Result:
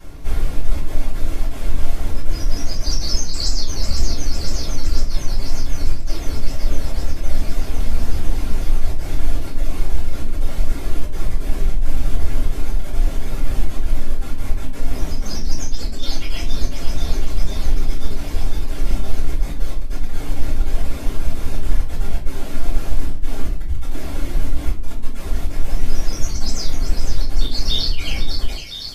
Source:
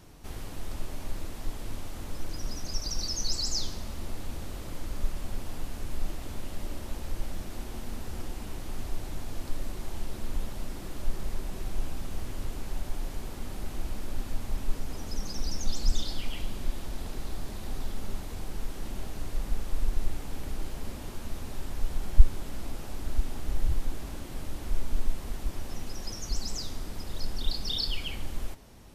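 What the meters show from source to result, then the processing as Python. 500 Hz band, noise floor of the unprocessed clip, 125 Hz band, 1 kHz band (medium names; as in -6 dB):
+10.0 dB, -40 dBFS, +12.0 dB, +8.5 dB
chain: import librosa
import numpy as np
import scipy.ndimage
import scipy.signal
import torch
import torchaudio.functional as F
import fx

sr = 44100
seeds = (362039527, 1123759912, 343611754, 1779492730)

y = fx.high_shelf(x, sr, hz=5800.0, db=-3.0)
y = fx.echo_wet_highpass(y, sr, ms=506, feedback_pct=78, hz=2100.0, wet_db=-7.0)
y = fx.dereverb_blind(y, sr, rt60_s=0.84)
y = fx.over_compress(y, sr, threshold_db=-32.0, ratio=-1.0)
y = fx.room_shoebox(y, sr, seeds[0], volume_m3=31.0, walls='mixed', distance_m=2.2)
y = y * 10.0 ** (-4.0 / 20.0)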